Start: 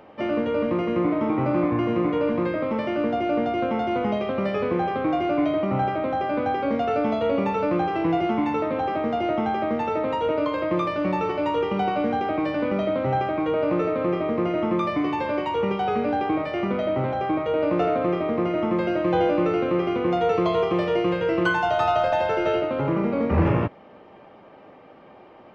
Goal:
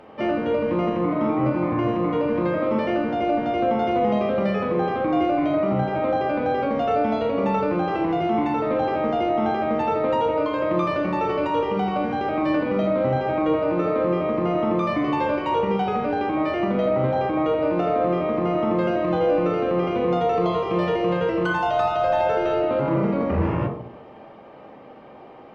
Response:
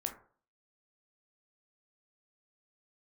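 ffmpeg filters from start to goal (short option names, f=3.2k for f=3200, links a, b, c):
-filter_complex "[0:a]alimiter=limit=-17.5dB:level=0:latency=1:release=127[a];[1:a]atrim=start_sample=2205,asetrate=26019,aresample=44100[b];[a][b]afir=irnorm=-1:irlink=0"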